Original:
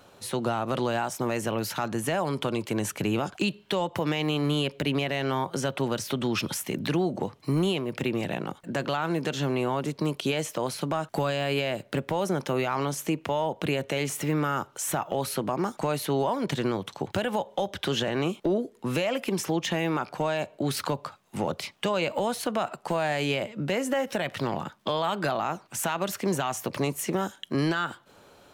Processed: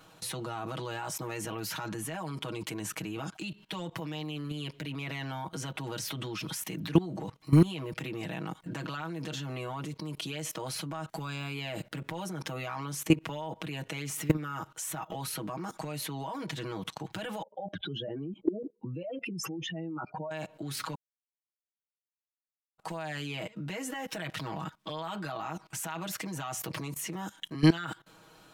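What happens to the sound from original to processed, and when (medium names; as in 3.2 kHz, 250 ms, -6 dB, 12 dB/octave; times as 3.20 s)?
17.42–20.31 s: spectral contrast enhancement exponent 2.6
20.95–22.78 s: mute
whole clip: peaking EQ 520 Hz -5.5 dB 0.93 oct; comb 6.3 ms, depth 98%; level held to a coarse grid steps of 20 dB; trim +3 dB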